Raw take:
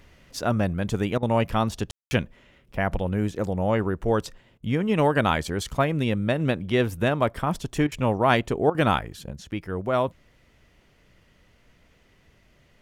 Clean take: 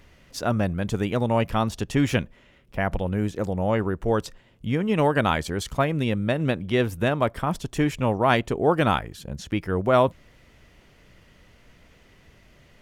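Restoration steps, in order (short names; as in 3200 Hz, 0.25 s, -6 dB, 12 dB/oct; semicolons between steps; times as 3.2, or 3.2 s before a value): room tone fill 1.91–2.11; interpolate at 1.18/4.58/7.87/8.7, 45 ms; gain correction +5 dB, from 9.31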